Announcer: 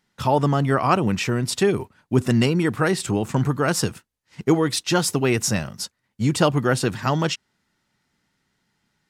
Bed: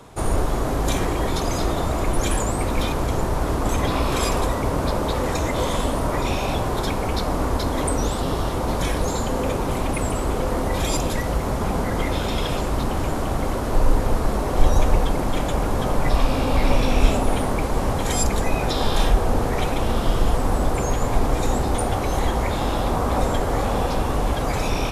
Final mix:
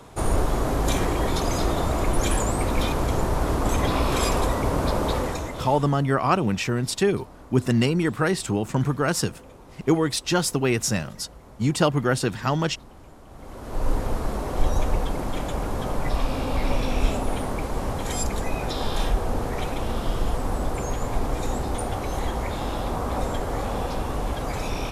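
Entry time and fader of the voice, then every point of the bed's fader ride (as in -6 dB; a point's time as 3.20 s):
5.40 s, -2.0 dB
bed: 5.15 s -1 dB
6.09 s -23.5 dB
13.25 s -23.5 dB
13.89 s -5.5 dB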